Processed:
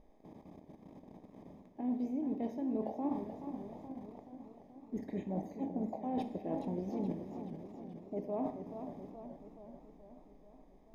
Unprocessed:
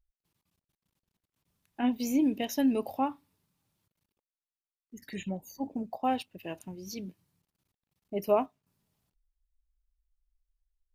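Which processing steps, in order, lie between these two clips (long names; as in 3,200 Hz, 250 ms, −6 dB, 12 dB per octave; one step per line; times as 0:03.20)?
compressor on every frequency bin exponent 0.6
in parallel at −10 dB: bit reduction 7 bits
on the sum: moving average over 31 samples
reversed playback
downward compressor 12 to 1, threshold −41 dBFS, peak gain reduction 22.5 dB
reversed playback
four-comb reverb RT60 0.9 s, combs from 25 ms, DRR 10 dB
feedback echo with a swinging delay time 428 ms, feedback 62%, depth 120 cents, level −9 dB
level +6.5 dB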